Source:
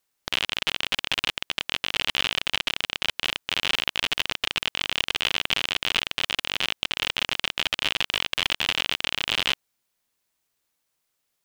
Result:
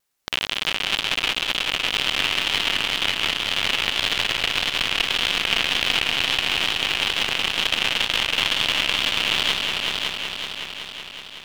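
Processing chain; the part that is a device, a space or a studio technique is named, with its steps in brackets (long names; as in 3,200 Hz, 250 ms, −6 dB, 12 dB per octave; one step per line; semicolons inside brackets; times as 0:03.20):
multi-head tape echo (echo machine with several playback heads 187 ms, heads all three, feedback 66%, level −7.5 dB; tape wow and flutter)
level +1.5 dB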